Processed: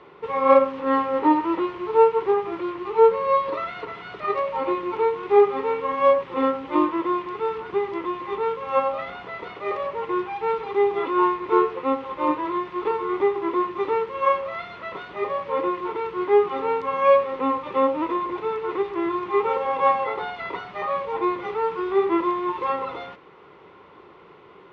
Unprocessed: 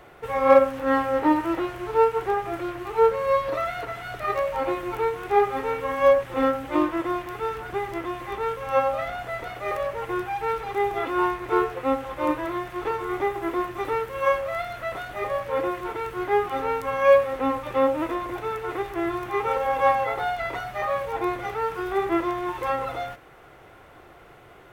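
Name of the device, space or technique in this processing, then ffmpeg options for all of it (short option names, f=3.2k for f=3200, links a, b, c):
guitar cabinet: -af "highpass=110,equalizer=f=120:t=q:w=4:g=-9,equalizer=f=180:t=q:w=4:g=6,equalizer=f=410:t=q:w=4:g=7,equalizer=f=700:t=q:w=4:g=-10,equalizer=f=1k:t=q:w=4:g=9,equalizer=f=1.6k:t=q:w=4:g=-7,lowpass=f=4.4k:w=0.5412,lowpass=f=4.4k:w=1.3066"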